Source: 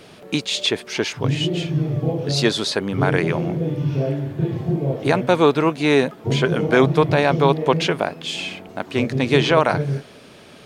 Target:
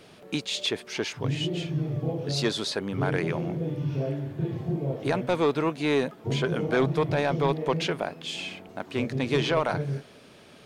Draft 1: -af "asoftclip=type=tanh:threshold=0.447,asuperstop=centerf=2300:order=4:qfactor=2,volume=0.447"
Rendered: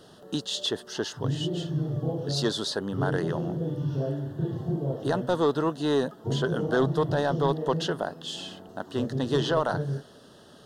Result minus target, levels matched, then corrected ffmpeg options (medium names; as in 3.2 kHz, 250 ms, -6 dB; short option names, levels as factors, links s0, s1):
2 kHz band -3.5 dB
-af "asoftclip=type=tanh:threshold=0.447,volume=0.447"